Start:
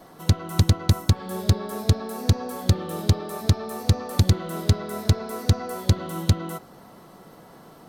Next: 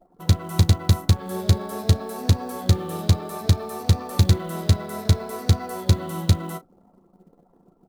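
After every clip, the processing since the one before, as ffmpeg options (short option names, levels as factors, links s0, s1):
-af "anlmdn=0.398,aecho=1:1:11|35:0.355|0.188,acrusher=bits=7:mode=log:mix=0:aa=0.000001"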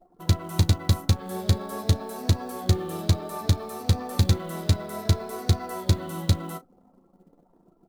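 -af "flanger=delay=2.7:depth=1.3:regen=67:speed=0.37:shape=triangular,volume=1.26"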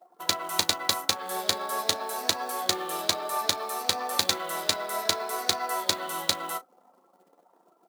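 -af "highpass=740,volume=2.37"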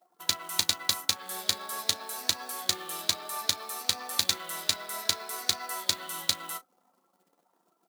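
-af "equalizer=f=560:t=o:w=2.6:g=-11.5"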